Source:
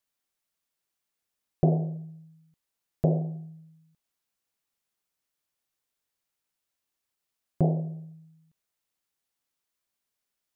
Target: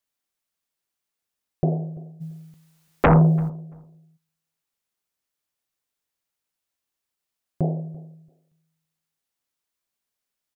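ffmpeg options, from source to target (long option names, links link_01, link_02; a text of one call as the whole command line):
ffmpeg -i in.wav -filter_complex "[0:a]asplit=3[link_01][link_02][link_03];[link_01]afade=type=out:start_time=2.2:duration=0.02[link_04];[link_02]aeval=exprs='0.299*sin(PI/2*5.01*val(0)/0.299)':channel_layout=same,afade=type=in:start_time=2.2:duration=0.02,afade=type=out:start_time=3.48:duration=0.02[link_05];[link_03]afade=type=in:start_time=3.48:duration=0.02[link_06];[link_04][link_05][link_06]amix=inputs=3:normalize=0,asplit=2[link_07][link_08];[link_08]adelay=339,lowpass=frequency=970:poles=1,volume=-21dB,asplit=2[link_09][link_10];[link_10]adelay=339,lowpass=frequency=970:poles=1,volume=0.2[link_11];[link_07][link_09][link_11]amix=inputs=3:normalize=0" out.wav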